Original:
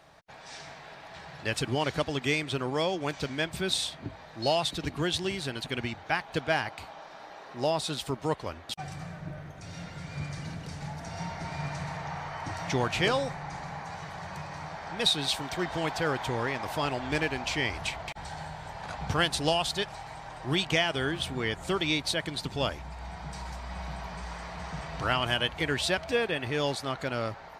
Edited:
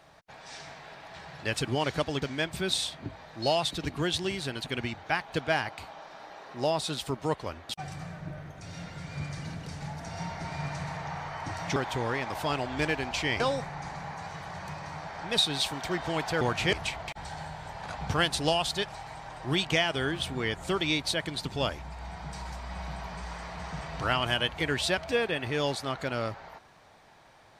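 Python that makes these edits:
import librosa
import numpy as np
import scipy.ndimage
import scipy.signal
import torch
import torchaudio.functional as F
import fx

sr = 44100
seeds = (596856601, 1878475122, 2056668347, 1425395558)

y = fx.edit(x, sr, fx.cut(start_s=2.22, length_s=1.0),
    fx.swap(start_s=12.76, length_s=0.32, other_s=16.09, other_length_s=1.64), tone=tone)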